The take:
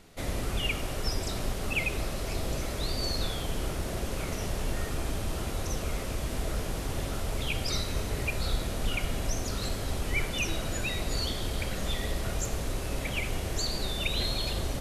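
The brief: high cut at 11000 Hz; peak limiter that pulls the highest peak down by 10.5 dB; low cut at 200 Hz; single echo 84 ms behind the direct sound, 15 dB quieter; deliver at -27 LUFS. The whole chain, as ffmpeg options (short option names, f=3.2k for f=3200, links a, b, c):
-af "highpass=200,lowpass=11k,alimiter=level_in=5dB:limit=-24dB:level=0:latency=1,volume=-5dB,aecho=1:1:84:0.178,volume=10.5dB"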